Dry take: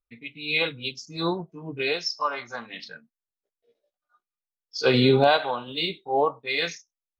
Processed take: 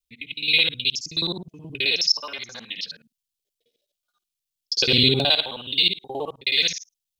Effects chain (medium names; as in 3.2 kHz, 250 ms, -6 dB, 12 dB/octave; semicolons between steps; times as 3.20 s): time reversed locally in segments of 53 ms; FFT filter 160 Hz 0 dB, 1.3 kHz -12 dB, 3.1 kHz +11 dB